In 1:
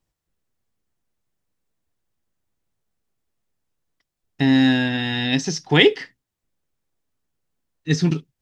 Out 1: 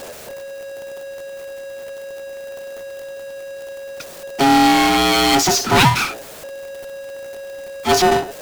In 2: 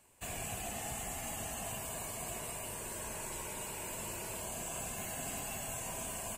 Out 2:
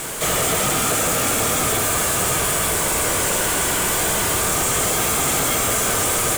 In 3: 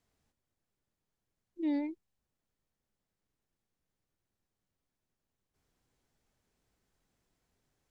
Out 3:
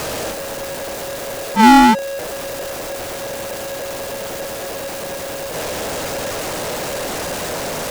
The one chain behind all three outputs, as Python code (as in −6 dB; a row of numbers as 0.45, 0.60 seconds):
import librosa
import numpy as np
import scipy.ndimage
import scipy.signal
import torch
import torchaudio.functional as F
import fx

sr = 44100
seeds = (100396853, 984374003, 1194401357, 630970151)

y = x * np.sin(2.0 * np.pi * 550.0 * np.arange(len(x)) / sr)
y = fx.power_curve(y, sr, exponent=0.35)
y = y * 10.0 ** (-20 / 20.0) / np.sqrt(np.mean(np.square(y)))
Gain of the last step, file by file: −3.5, +16.0, +23.0 decibels